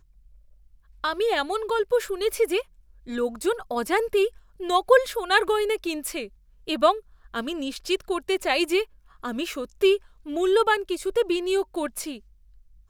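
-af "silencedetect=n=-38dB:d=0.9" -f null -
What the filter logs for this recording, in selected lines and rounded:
silence_start: 0.00
silence_end: 1.04 | silence_duration: 1.04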